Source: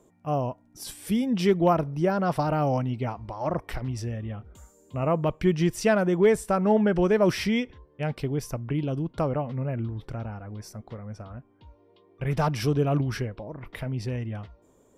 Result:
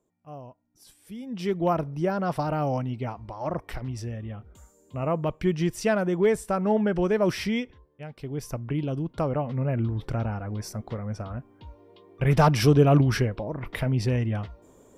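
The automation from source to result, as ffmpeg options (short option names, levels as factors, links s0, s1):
-af "volume=7.08,afade=t=in:st=1.15:d=0.62:silence=0.223872,afade=t=out:st=7.57:d=0.55:silence=0.281838,afade=t=in:st=8.12:d=0.41:silence=0.237137,afade=t=in:st=9.25:d=0.91:silence=0.473151"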